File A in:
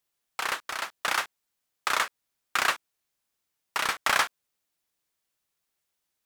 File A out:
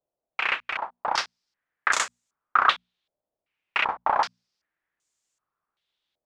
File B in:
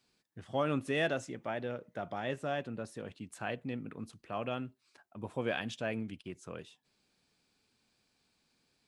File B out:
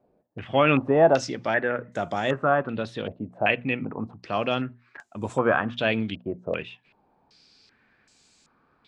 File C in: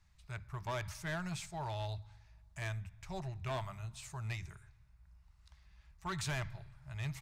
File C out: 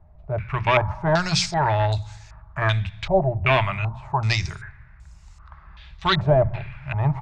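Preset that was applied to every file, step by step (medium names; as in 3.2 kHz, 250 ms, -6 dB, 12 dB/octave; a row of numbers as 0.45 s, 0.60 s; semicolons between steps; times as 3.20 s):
hum notches 60/120/180/240 Hz; step-sequenced low-pass 2.6 Hz 620–7200 Hz; peak normalisation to -6 dBFS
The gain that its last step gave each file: -1.0 dB, +11.0 dB, +18.5 dB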